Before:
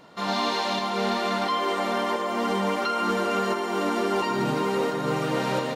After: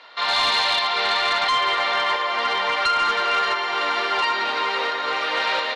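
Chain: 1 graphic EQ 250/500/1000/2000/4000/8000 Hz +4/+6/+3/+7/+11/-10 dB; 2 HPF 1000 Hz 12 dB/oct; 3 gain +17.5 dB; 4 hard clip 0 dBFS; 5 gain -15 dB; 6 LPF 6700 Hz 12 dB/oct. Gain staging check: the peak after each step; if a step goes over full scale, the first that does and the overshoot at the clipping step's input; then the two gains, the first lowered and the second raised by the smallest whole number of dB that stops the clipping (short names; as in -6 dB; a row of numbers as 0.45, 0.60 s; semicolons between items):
-7.5, -9.0, +8.5, 0.0, -15.0, -14.0 dBFS; step 3, 8.5 dB; step 3 +8.5 dB, step 5 -6 dB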